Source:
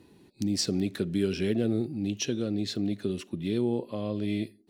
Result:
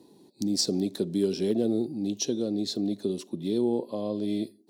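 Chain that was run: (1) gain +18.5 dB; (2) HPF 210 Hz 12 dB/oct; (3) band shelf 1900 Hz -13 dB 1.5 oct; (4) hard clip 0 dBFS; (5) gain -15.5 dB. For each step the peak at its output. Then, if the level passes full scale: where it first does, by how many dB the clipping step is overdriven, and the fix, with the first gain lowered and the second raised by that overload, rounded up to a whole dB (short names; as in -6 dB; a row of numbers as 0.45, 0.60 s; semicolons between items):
+4.0, +4.0, +3.0, 0.0, -15.5 dBFS; step 1, 3.0 dB; step 1 +15.5 dB, step 5 -12.5 dB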